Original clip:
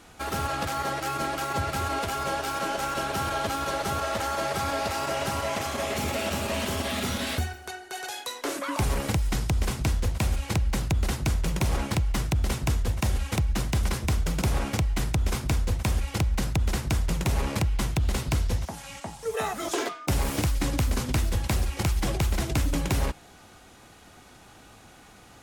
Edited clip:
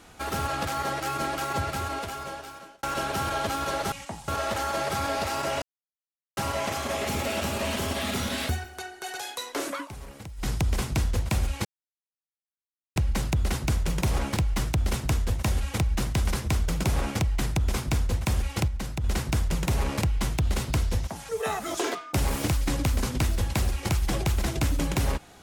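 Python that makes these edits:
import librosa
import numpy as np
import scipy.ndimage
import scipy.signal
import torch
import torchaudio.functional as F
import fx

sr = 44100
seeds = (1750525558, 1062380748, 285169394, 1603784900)

y = fx.edit(x, sr, fx.fade_out_span(start_s=1.54, length_s=1.29),
    fx.insert_silence(at_s=5.26, length_s=0.75),
    fx.fade_down_up(start_s=8.64, length_s=0.74, db=-15.5, fade_s=0.12),
    fx.insert_silence(at_s=10.54, length_s=1.31),
    fx.clip_gain(start_s=16.26, length_s=0.36, db=-5.5),
    fx.move(start_s=18.87, length_s=0.36, to_s=3.92), tone=tone)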